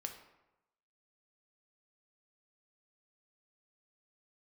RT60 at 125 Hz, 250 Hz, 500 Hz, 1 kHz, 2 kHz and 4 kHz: 1.0 s, 0.90 s, 0.95 s, 0.95 s, 0.80 s, 0.55 s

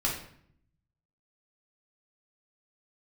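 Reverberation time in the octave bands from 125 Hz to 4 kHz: 1.2 s, 0.95 s, 0.65 s, 0.60 s, 0.60 s, 0.50 s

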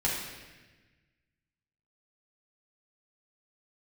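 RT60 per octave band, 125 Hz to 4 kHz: 2.0 s, 1.7 s, 1.4 s, 1.1 s, 1.5 s, 1.2 s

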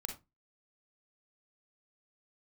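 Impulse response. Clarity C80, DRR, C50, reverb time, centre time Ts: 17.0 dB, 3.5 dB, 7.5 dB, 0.20 s, 17 ms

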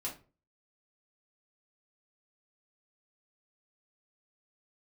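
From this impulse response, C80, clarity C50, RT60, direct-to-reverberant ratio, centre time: 17.0 dB, 10.0 dB, 0.35 s, -5.0 dB, 22 ms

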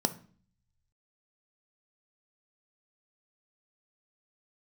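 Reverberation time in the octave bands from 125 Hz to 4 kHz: 1.3 s, 0.75 s, 0.45 s, 0.45 s, 0.45 s, 0.45 s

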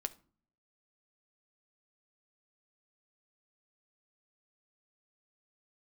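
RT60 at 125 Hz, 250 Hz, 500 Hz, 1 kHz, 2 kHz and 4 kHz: 0.80 s, 0.70 s, 0.45 s, 0.45 s, 0.35 s, 0.30 s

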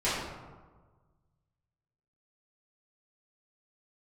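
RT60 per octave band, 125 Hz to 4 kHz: 2.1 s, 1.5 s, 1.4 s, 1.4 s, 1.0 s, 0.65 s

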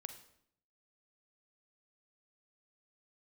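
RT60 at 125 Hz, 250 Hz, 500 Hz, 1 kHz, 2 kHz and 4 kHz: 0.90 s, 0.85 s, 0.70 s, 0.65 s, 0.60 s, 0.55 s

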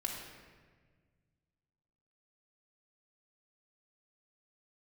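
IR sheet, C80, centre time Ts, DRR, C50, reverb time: 4.0 dB, 63 ms, -2.0 dB, 2.5 dB, 1.6 s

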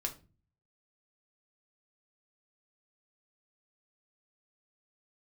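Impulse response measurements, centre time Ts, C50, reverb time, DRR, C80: 9 ms, 14.0 dB, 0.35 s, 2.5 dB, 20.5 dB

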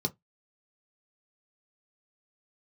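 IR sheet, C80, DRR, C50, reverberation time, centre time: 39.0 dB, 2.5 dB, 26.5 dB, 0.15 s, 5 ms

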